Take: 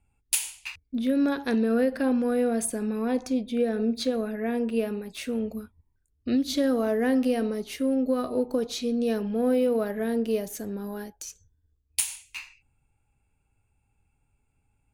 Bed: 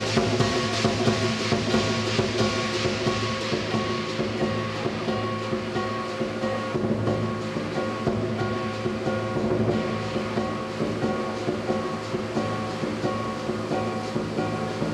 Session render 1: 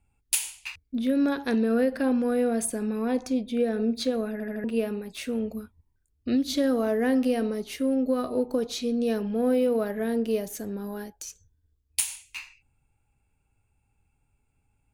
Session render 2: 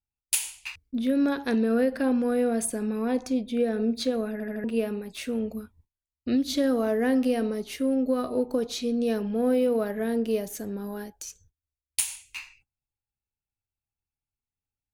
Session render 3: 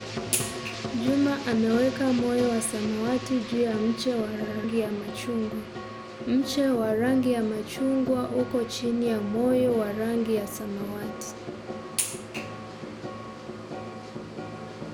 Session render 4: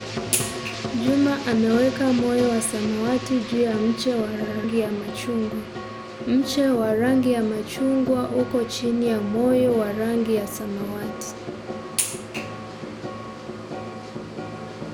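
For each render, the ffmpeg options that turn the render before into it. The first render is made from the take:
-filter_complex "[0:a]asplit=5[s0][s1][s2][s3][s4];[s0]atrim=end=4.402[s5];[s1]atrim=start=4.318:end=4.402[s6];[s2]atrim=start=4.318:end=4.402[s7];[s3]atrim=start=4.318:end=4.402[s8];[s4]atrim=start=4.638[s9];[s5][s6]acrossfade=d=0.004:c1=hsin:c2=hsin[s10];[s10][s7]acrossfade=d=0.004:c1=hsin:c2=hsin[s11];[s11][s8]acrossfade=d=0.004:c1=hsin:c2=hsin[s12];[s12][s9]acrossfade=d=0.004:c1=hsin:c2=hsin"
-af "agate=range=0.0631:threshold=0.00112:ratio=16:detection=peak"
-filter_complex "[1:a]volume=0.299[s0];[0:a][s0]amix=inputs=2:normalize=0"
-af "volume=1.58"

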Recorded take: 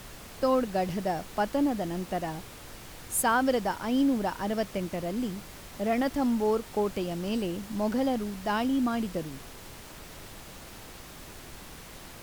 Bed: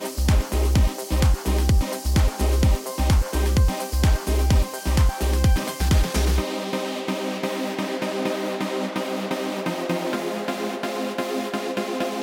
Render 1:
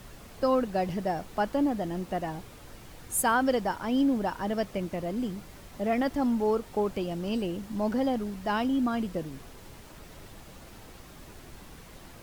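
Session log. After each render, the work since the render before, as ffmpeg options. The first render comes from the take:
-af "afftdn=nr=6:nf=-46"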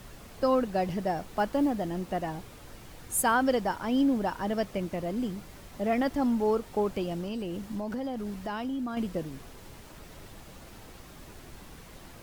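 -filter_complex "[0:a]asettb=1/sr,asplit=3[s0][s1][s2];[s0]atrim=end=1.184[s3];[s1]atrim=start=1.18:end=1.91,asetpts=PTS-STARTPTS,afade=t=in:d=0.004:c=qsin,afade=t=out:st=0.726:d=0.004:c=qsin,acrusher=bits=8:mode=log:mix=0:aa=0.000001[s4];[s2]atrim=start=1.906[s5];[s3][s4]acrossfade=d=0.004:c1=hsin:c2=qsin[s6];[s6][s5]acrossfade=d=0.004:c1=qsin:c2=hsin,asettb=1/sr,asplit=3[s7][s8][s9];[s7]atrim=end=7.204[s10];[s8]atrim=start=7.2:end=8.97,asetpts=PTS-STARTPTS,afade=t=in:d=0.004:c=qsin,afade=t=out:st=1.766:d=0.004:c=qsin,acompressor=threshold=0.0316:ratio=6:attack=3.2:release=140:knee=1:detection=peak[s11];[s9]atrim=start=8.966[s12];[s10][s11]acrossfade=d=0.004:c1=hsin:c2=qsin[s13];[s13][s12]acrossfade=d=0.004:c1=qsin:c2=hsin"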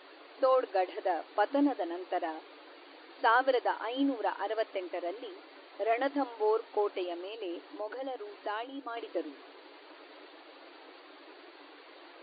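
-af "afftfilt=real='re*between(b*sr/4096,270,4700)':imag='im*between(b*sr/4096,270,4700)':win_size=4096:overlap=0.75,adynamicequalizer=threshold=0.00794:dfrequency=350:dqfactor=1.2:tfrequency=350:tqfactor=1.2:attack=5:release=100:ratio=0.375:range=1.5:mode=cutabove:tftype=bell"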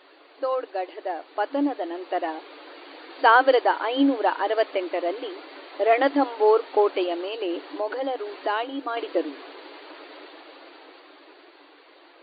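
-af "dynaudnorm=f=200:g=21:m=3.35"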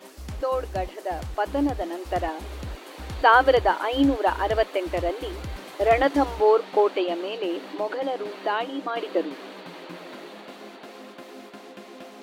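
-filter_complex "[1:a]volume=0.141[s0];[0:a][s0]amix=inputs=2:normalize=0"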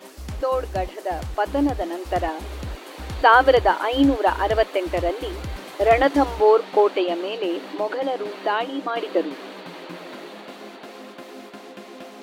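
-af "volume=1.41,alimiter=limit=0.708:level=0:latency=1"

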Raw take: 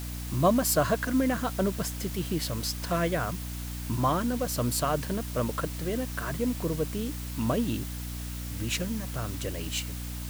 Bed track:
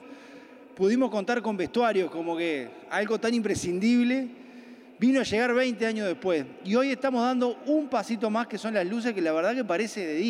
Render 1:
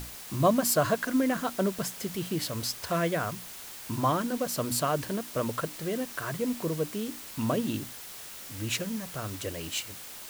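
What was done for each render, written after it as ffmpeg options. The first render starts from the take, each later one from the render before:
-af "bandreject=f=60:t=h:w=6,bandreject=f=120:t=h:w=6,bandreject=f=180:t=h:w=6,bandreject=f=240:t=h:w=6,bandreject=f=300:t=h:w=6"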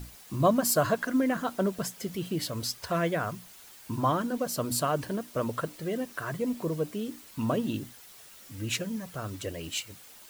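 -af "afftdn=nr=9:nf=-44"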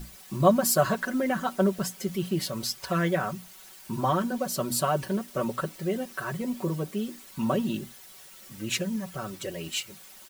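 -af "aecho=1:1:5.3:0.75"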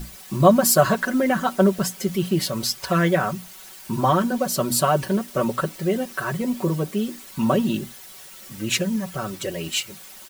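-af "volume=2.11,alimiter=limit=0.708:level=0:latency=1"

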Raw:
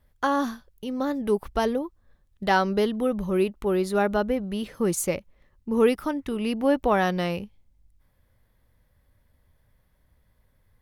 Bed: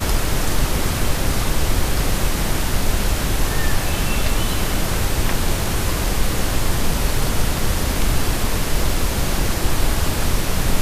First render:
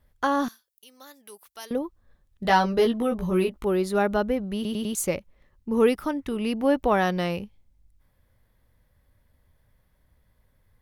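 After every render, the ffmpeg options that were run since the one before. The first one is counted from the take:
-filter_complex "[0:a]asettb=1/sr,asplit=3[s0][s1][s2];[s0]atrim=end=0.484[s3];[s1]atrim=start=0.48:end=1.71,asetpts=PTS-STARTPTS,afade=t=in:d=0.004:c=qsin,afade=t=out:st=1.226:d=0.004:c=qsin,aderivative[s4];[s2]atrim=start=1.706[s5];[s3][s4]acrossfade=d=0.004:c1=hsin:c2=qsin[s6];[s6][s5]acrossfade=d=0.004:c1=qsin:c2=hsin,asettb=1/sr,asplit=3[s7][s8][s9];[s7]atrim=end=2.434[s10];[s8]atrim=start=2.43:end=3.65,asetpts=PTS-STARTPTS,afade=t=in:d=0.004:c=qsin,afade=t=out:st=1.216:d=0.004:c=qsin,asplit=2[s11][s12];[s12]adelay=17,volume=0.668[s13];[s11][s13]amix=inputs=2:normalize=0,atrim=end_sample=53802[s14];[s9]atrim=start=3.646[s15];[s10][s14]acrossfade=d=0.004:c1=hsin:c2=qsin[s16];[s16][s15]acrossfade=d=0.004:c1=qsin:c2=hsin,asplit=5[s17][s18][s19][s20][s21];[s17]atrim=end=4.652[s22];[s18]atrim=start=4.548:end=4.652[s23];[s19]atrim=start=4.548:end=4.652[s24];[s20]atrim=start=4.548:end=4.652[s25];[s21]atrim=start=4.948[s26];[s22][s23]acrossfade=d=0.004:c1=hsin:c2=hsin[s27];[s27][s24]acrossfade=d=0.004:c1=hsin:c2=hsin[s28];[s28][s25]acrossfade=d=0.004:c1=hsin:c2=hsin[s29];[s29][s26]acrossfade=d=0.004:c1=hsin:c2=hsin"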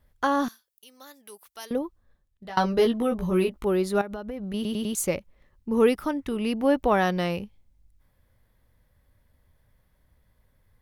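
-filter_complex "[0:a]asettb=1/sr,asplit=3[s0][s1][s2];[s0]atrim=end=4.014[s3];[s1]atrim=start=4.01:end=4.54,asetpts=PTS-STARTPTS,afade=t=in:d=0.004:c=qsin,afade=t=out:st=0.526:d=0.004:c=qsin,acompressor=threshold=0.0316:ratio=12:attack=3.2:release=140:knee=1:detection=peak[s4];[s2]atrim=start=4.536[s5];[s3][s4]acrossfade=d=0.004:c1=hsin:c2=qsin[s6];[s6][s5]acrossfade=d=0.004:c1=qsin:c2=hsin,asplit=2[s7][s8];[s7]atrim=end=2.57,asetpts=PTS-STARTPTS,afade=t=out:st=1.8:d=0.77:silence=0.0630957[s9];[s8]atrim=start=2.57,asetpts=PTS-STARTPTS,afade=t=in:d=0.004:c=hsin:silence=0.0630957[s10];[s9][s10]concat=n=2:v=0:a=1"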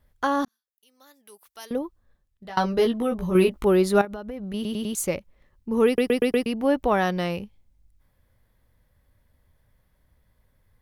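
-filter_complex "[0:a]asplit=9[s0][s1][s2][s3][s4][s5][s6][s7][s8];[s0]atrim=end=0.45,asetpts=PTS-STARTPTS,afade=t=out:st=0.446:d=0.004:c=hsin[s9];[s1]atrim=start=0.45:end=3.352,asetpts=PTS-STARTPTS,afade=t=in:d=1.32[s10];[s2]atrim=start=3.348:end=4.052,asetpts=PTS-STARTPTS,volume=1.78[s11];[s3]atrim=start=4.048:end=5.982[s12];[s4]atrim=start=5.858:end=5.982[s13];[s5]atrim=start=5.858:end=5.982[s14];[s6]atrim=start=5.858:end=5.982[s15];[s7]atrim=start=5.858:end=5.982[s16];[s8]atrim=start=6.458[s17];[s9][s10]concat=n=2:v=0:a=1[s18];[s18][s11]acrossfade=d=0.004:c1=hsin:c2=hsin[s19];[s19][s12]acrossfade=d=0.004:c1=hsin:c2=hsin[s20];[s20][s13]acrossfade=d=0.004:c1=hsin:c2=hsin[s21];[s21][s14]acrossfade=d=0.004:c1=hsin:c2=hsin[s22];[s22][s15]acrossfade=d=0.004:c1=hsin:c2=hsin[s23];[s23][s16]acrossfade=d=0.004:c1=hsin:c2=hsin[s24];[s24][s17]acrossfade=d=0.004:c1=hsin:c2=hsin"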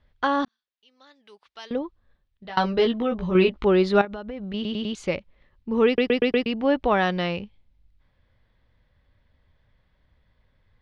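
-af "lowpass=f=3900:w=0.5412,lowpass=f=3900:w=1.3066,highshelf=f=2900:g=9.5"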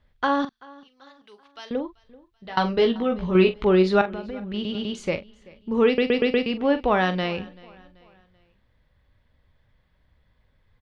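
-filter_complex "[0:a]asplit=2[s0][s1];[s1]adelay=43,volume=0.266[s2];[s0][s2]amix=inputs=2:normalize=0,aecho=1:1:385|770|1155:0.0708|0.0311|0.0137"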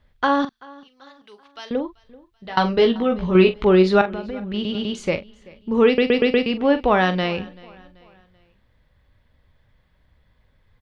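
-af "volume=1.5,alimiter=limit=0.708:level=0:latency=1"

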